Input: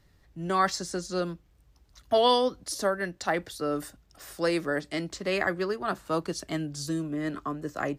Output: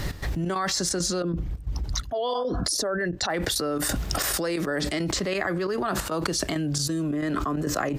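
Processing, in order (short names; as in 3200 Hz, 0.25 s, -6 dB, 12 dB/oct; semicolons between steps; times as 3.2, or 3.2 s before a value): 1.22–3.3 formant sharpening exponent 1.5; step gate "x.xx.xxx.x" 135 bpm -12 dB; 2.32–2.62 spectral repair 660–1700 Hz both; fast leveller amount 100%; gain -7 dB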